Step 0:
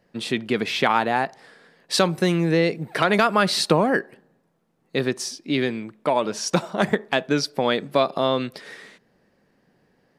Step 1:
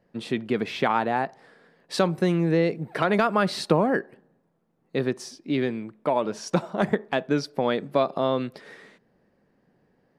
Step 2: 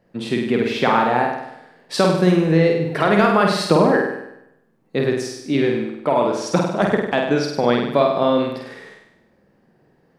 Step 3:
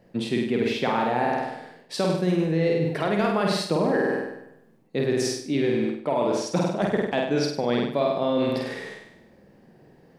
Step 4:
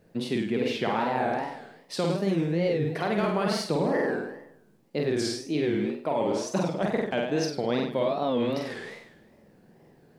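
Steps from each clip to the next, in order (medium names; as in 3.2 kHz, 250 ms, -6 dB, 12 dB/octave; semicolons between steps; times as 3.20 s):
treble shelf 2 kHz -9.5 dB; trim -1.5 dB
flutter echo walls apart 8.5 m, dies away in 0.82 s; trim +4.5 dB
peaking EQ 1.3 kHz -5.5 dB 0.82 oct; reverse; compression 4:1, threshold -27 dBFS, peak gain reduction 14.5 dB; reverse; trim +5 dB
wow and flutter 150 cents; word length cut 12-bit, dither none; trim -3 dB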